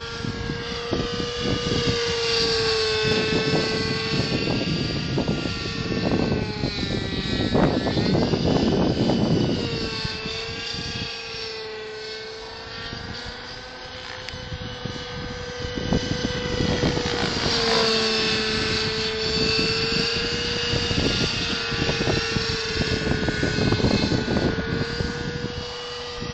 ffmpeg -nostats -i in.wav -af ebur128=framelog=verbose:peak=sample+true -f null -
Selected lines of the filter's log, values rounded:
Integrated loudness:
  I:         -23.5 LUFS
  Threshold: -33.7 LUFS
Loudness range:
  LRA:        10.0 LU
  Threshold: -43.5 LUFS
  LRA low:   -31.2 LUFS
  LRA high:  -21.3 LUFS
Sample peak:
  Peak:      -11.8 dBFS
True peak:
  Peak:      -11.7 dBFS